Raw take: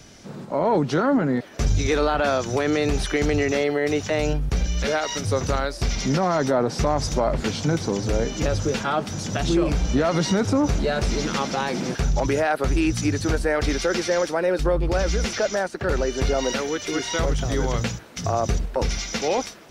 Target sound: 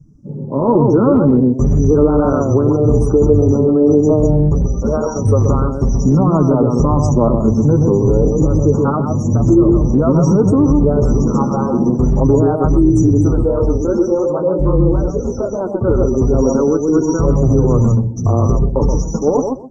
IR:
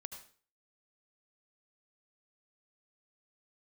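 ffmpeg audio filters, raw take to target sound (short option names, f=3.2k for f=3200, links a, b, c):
-filter_complex "[0:a]asettb=1/sr,asplit=3[a][b][c];[a]atrim=end=13.294[d];[b]atrim=start=13.29:end=15.61,asetpts=PTS-STARTPTS,afade=t=in:d=0.004:c=qsin,afade=t=out:st=2.316:d=0.004:c=qsin,flanger=delay=20:depth=6.8:speed=2.9[e];[c]atrim=start=15.606[f];[d][e]acrossfade=d=0.004:c1=hsin:c2=qsin[g];[g][f]acrossfade=d=0.004:c1=qsin:c2=hsin,asuperstop=centerf=2700:order=8:qfactor=0.52,highshelf=f=3k:g=-6.5,asplit=2[h][i];[i]adelay=128,lowpass=f=2.6k:p=1,volume=-4.5dB,asplit=2[j][k];[k]adelay=128,lowpass=f=2.6k:p=1,volume=0.19,asplit=2[l][m];[m]adelay=128,lowpass=f=2.6k:p=1,volume=0.19[n];[h][j][l][n]amix=inputs=4:normalize=0,dynaudnorm=f=150:g=7:m=4dB,afftdn=nr=24:nf=-37,flanger=delay=6.2:depth=2.9:regen=26:speed=0.47:shape=triangular,lowpass=8k,equalizer=f=710:t=o:w=0.79:g=-14.5,alimiter=level_in=15dB:limit=-1dB:release=50:level=0:latency=1,volume=-1dB" -ar 44100 -c:a nellymoser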